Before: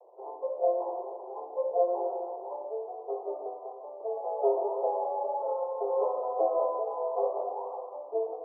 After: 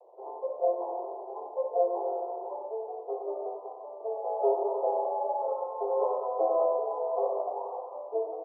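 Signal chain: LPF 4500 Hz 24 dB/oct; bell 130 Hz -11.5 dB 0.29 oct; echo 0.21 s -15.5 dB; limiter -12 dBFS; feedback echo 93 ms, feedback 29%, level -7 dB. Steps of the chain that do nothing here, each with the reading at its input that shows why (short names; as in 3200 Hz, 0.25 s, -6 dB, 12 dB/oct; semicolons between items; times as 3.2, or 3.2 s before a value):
LPF 4500 Hz: input band ends at 1100 Hz; bell 130 Hz: input band starts at 320 Hz; limiter -12 dBFS: input peak -14.5 dBFS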